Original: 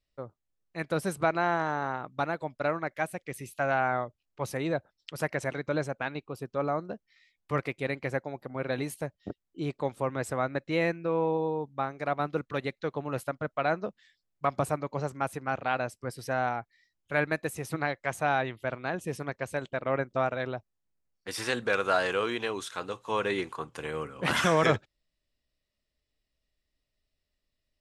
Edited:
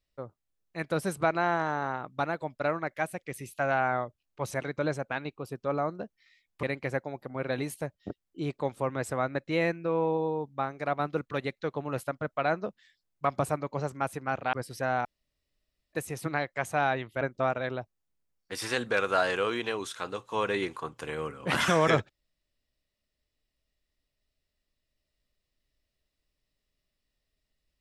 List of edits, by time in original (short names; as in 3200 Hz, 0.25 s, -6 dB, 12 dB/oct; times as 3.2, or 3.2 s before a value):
4.51–5.41 cut
7.53–7.83 cut
15.73–16.01 cut
16.53–17.41 room tone
18.69–19.97 cut